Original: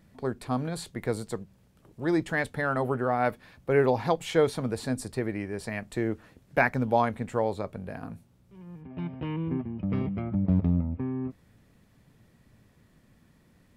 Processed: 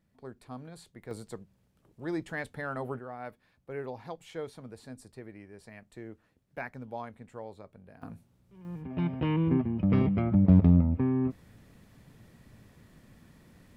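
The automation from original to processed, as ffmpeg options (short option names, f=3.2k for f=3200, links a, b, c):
-af "asetnsamples=n=441:p=0,asendcmd='1.11 volume volume -8dB;2.99 volume volume -15.5dB;8.02 volume volume -4dB;8.65 volume volume 4.5dB',volume=-14dB"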